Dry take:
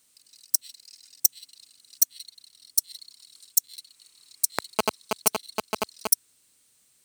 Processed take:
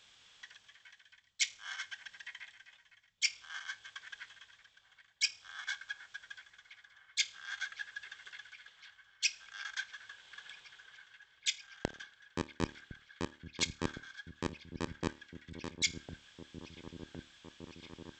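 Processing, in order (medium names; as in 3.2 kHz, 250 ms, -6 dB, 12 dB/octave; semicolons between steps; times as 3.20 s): reverse; compression 5:1, threshold -37 dBFS, peak gain reduction 21 dB; reverse; feedback comb 95 Hz, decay 0.15 s, harmonics all, mix 40%; delay with an opening low-pass 410 ms, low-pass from 400 Hz, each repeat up 1 oct, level -6 dB; wide varispeed 0.387×; trim +4.5 dB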